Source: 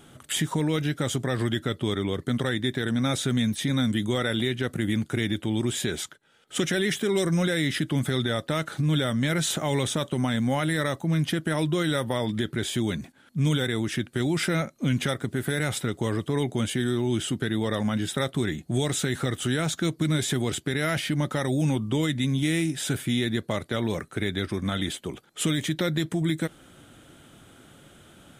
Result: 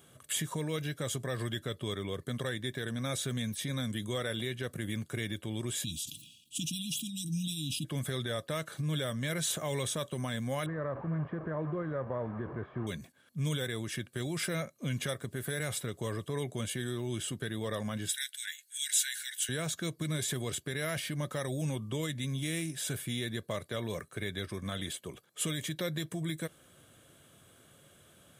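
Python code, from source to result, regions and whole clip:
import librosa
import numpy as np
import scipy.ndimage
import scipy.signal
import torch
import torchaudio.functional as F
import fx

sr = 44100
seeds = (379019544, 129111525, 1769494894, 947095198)

y = fx.chain(x, sr, fx.brickwall_bandstop(low_hz=320.0, high_hz=2400.0),
    fx.sustainer(db_per_s=62.0), at=(5.84, 7.85))
y = fx.chain(y, sr, fx.delta_mod(bps=64000, step_db=-26.0),
    fx.lowpass(hz=1400.0, slope=24), at=(10.66, 12.87))
y = fx.chain(y, sr, fx.brickwall_highpass(low_hz=1400.0),
    fx.high_shelf(hz=2500.0, db=7.5), at=(18.09, 19.49))
y = scipy.signal.sosfilt(scipy.signal.butter(2, 74.0, 'highpass', fs=sr, output='sos'), y)
y = fx.high_shelf(y, sr, hz=8600.0, db=10.0)
y = y + 0.41 * np.pad(y, (int(1.8 * sr / 1000.0), 0))[:len(y)]
y = F.gain(torch.from_numpy(y), -9.0).numpy()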